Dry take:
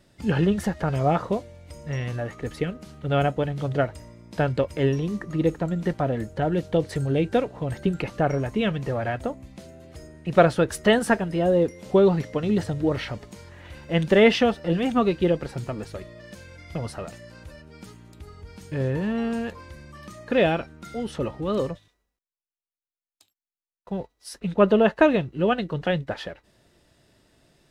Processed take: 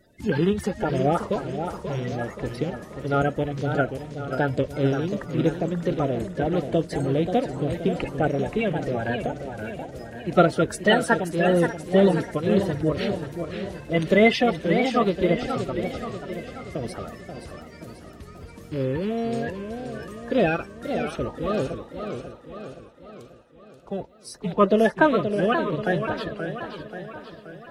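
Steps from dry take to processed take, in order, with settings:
spectral magnitudes quantised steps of 30 dB
feedback echo with a high-pass in the loop 589 ms, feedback 43%, level −15 dB
feedback echo with a swinging delay time 531 ms, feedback 53%, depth 164 cents, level −8 dB

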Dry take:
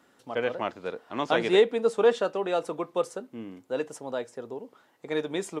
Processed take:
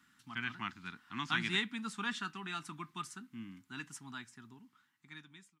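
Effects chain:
fade-out on the ending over 1.52 s
Chebyshev band-stop filter 200–1,400 Hz, order 2
level −2.5 dB

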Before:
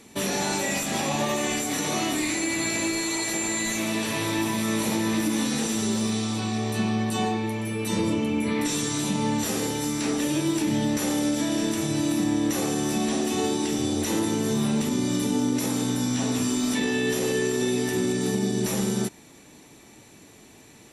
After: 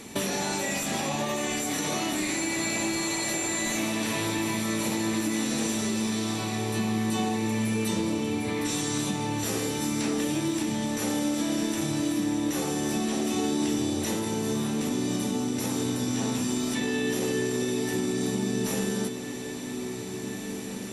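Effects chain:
downward compressor 4 to 1, threshold −35 dBFS, peak gain reduction 12.5 dB
feedback delay with all-pass diffusion 1,964 ms, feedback 43%, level −8 dB
level +7 dB

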